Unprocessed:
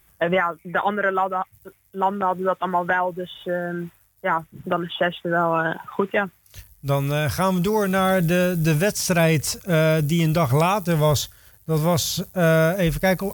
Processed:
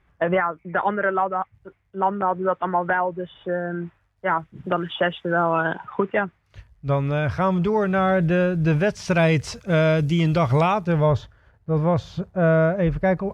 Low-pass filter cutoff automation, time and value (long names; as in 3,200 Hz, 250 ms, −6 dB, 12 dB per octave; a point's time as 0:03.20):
0:03.85 2,000 Hz
0:04.82 4,300 Hz
0:05.52 4,300 Hz
0:06.00 2,200 Hz
0:08.71 2,200 Hz
0:09.24 3,900 Hz
0:10.55 3,900 Hz
0:11.20 1,500 Hz